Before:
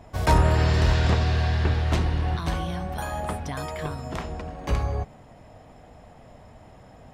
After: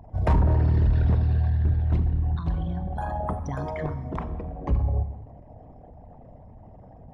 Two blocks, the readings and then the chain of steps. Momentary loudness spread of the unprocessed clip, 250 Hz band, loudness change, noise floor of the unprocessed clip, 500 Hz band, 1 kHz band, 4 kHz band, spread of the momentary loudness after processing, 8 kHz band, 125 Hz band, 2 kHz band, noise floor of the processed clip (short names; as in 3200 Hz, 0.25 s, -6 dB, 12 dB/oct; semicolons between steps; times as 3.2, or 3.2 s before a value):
13 LU, -1.0 dB, -0.5 dB, -50 dBFS, -4.0 dB, -5.0 dB, under -15 dB, 12 LU, under -15 dB, +1.0 dB, -11.5 dB, -48 dBFS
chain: formant sharpening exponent 2; Schroeder reverb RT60 1.2 s, combs from 29 ms, DRR 11.5 dB; overloaded stage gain 16.5 dB; gain +1.5 dB